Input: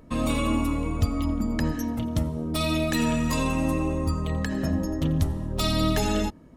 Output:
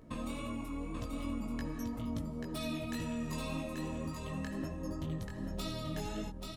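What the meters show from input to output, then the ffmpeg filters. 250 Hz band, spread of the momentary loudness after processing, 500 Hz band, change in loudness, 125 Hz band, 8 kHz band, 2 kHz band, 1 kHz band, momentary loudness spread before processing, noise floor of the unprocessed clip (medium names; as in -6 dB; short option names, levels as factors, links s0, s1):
-12.5 dB, 3 LU, -13.0 dB, -13.5 dB, -14.0 dB, -14.0 dB, -13.5 dB, -14.0 dB, 4 LU, -48 dBFS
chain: -af "acompressor=threshold=0.0251:ratio=6,flanger=delay=17:depth=4.5:speed=1.9,aecho=1:1:835:0.596,volume=0.794"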